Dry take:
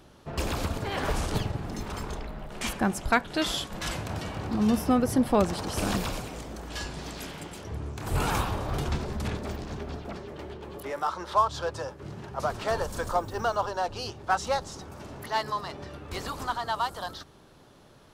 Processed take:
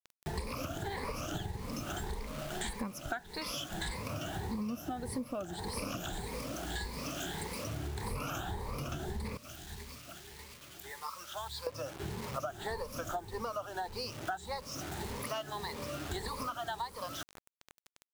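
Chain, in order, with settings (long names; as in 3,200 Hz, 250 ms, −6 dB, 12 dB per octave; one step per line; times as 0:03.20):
rippled gain that drifts along the octave scale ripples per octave 0.91, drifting +1.7 Hz, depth 17 dB
bit reduction 7 bits
0:09.37–0:11.67: guitar amp tone stack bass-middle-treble 5-5-5
downward compressor 10 to 1, threshold −35 dBFS, peak gain reduction 22 dB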